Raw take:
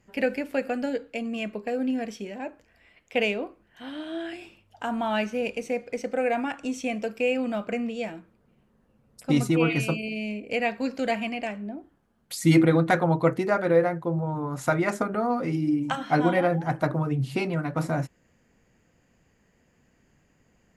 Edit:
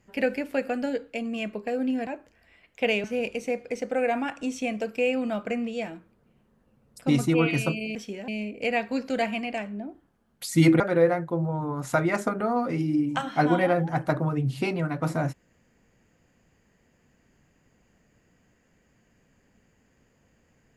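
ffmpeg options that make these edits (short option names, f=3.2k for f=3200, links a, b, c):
-filter_complex "[0:a]asplit=6[a][b][c][d][e][f];[a]atrim=end=2.072[g];[b]atrim=start=2.398:end=3.372[h];[c]atrim=start=5.258:end=10.172[i];[d]atrim=start=2.068:end=2.402[j];[e]atrim=start=10.168:end=12.692[k];[f]atrim=start=13.538[l];[g][h]acrossfade=d=0.004:c1=hsin:c2=hsin[m];[m][i]acrossfade=d=0.004:c1=hsin:c2=hsin[n];[n][j]acrossfade=d=0.004:c1=hsin:c2=hsin[o];[o][k]acrossfade=d=0.004:c1=hsin:c2=hsin[p];[p][l]acrossfade=d=0.004:c1=hsin:c2=hsin"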